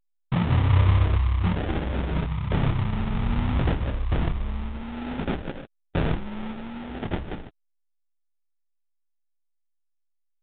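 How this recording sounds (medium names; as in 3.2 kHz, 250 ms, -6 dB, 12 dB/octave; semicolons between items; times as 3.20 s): a quantiser's noise floor 10-bit, dither none; phasing stages 6, 0.39 Hz, lowest notch 380–1900 Hz; aliases and images of a low sample rate 1.1 kHz, jitter 20%; A-law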